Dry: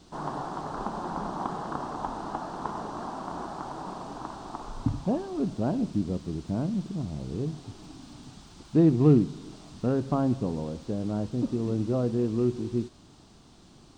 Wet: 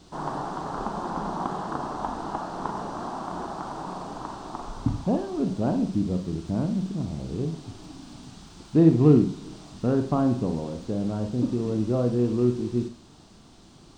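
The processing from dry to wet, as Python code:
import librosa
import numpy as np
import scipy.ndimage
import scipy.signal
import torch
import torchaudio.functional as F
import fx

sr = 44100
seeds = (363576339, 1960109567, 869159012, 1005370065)

y = fx.rev_schroeder(x, sr, rt60_s=0.35, comb_ms=33, drr_db=7.0)
y = y * 10.0 ** (2.0 / 20.0)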